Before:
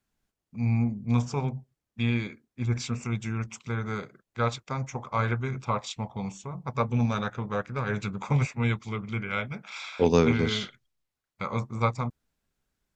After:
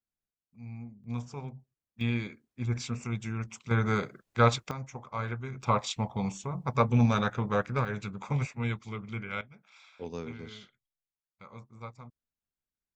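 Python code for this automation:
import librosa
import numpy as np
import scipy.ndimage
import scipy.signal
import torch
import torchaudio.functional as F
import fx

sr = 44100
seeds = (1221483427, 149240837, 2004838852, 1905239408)

y = fx.gain(x, sr, db=fx.steps((0.0, -17.5), (1.04, -11.0), (2.01, -3.5), (3.71, 4.5), (4.71, -7.5), (5.63, 2.0), (7.85, -5.5), (9.41, -18.0)))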